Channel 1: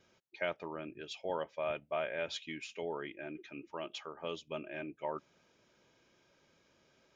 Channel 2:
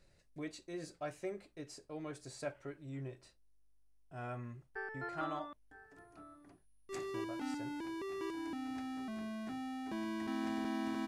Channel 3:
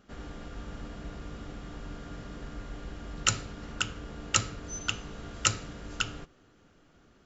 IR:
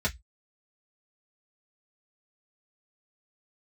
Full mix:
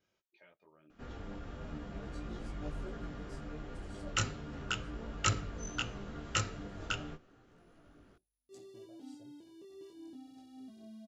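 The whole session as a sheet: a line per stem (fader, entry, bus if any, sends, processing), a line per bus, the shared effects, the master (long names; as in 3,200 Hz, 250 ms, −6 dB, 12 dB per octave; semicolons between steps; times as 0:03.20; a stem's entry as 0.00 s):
−8.5 dB, 0.00 s, no send, downward compressor 2 to 1, threshold −57 dBFS, peak gain reduction 14.5 dB
−6.0 dB, 1.60 s, no send, high-pass filter 73 Hz; flat-topped bell 1,500 Hz −15.5 dB
+2.0 dB, 0.90 s, no send, high-shelf EQ 3,600 Hz −9.5 dB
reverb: not used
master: micro pitch shift up and down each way 13 cents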